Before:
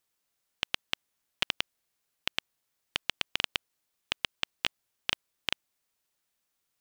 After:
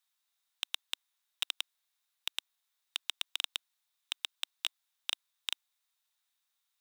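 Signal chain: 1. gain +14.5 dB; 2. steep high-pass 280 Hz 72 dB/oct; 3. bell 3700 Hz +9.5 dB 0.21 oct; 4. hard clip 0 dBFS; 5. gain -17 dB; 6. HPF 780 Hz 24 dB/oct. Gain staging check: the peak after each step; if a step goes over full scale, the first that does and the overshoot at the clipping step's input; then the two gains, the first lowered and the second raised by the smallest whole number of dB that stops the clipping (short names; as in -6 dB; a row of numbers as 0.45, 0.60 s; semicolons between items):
+7.5, +7.0, +9.0, 0.0, -17.0, -13.5 dBFS; step 1, 9.0 dB; step 1 +5.5 dB, step 5 -8 dB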